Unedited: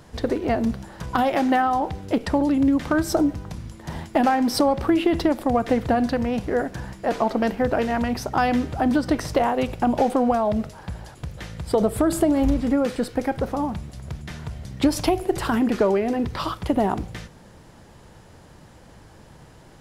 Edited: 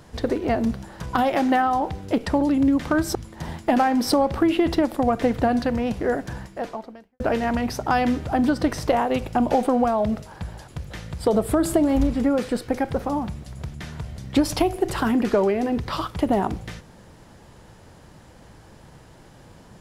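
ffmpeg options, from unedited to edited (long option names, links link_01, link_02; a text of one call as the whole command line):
ffmpeg -i in.wav -filter_complex "[0:a]asplit=3[link_01][link_02][link_03];[link_01]atrim=end=3.152[link_04];[link_02]atrim=start=3.618:end=7.67,asetpts=PTS-STARTPTS,afade=type=out:start_time=3.222:duration=0.83:curve=qua[link_05];[link_03]atrim=start=7.67,asetpts=PTS-STARTPTS,afade=type=in:duration=0.004:curve=hsin[link_06];[link_05][link_06]concat=n=2:v=0:a=1[link_07];[link_04][link_07]acrossfade=duration=0.004:curve1=hsin:curve2=hsin" out.wav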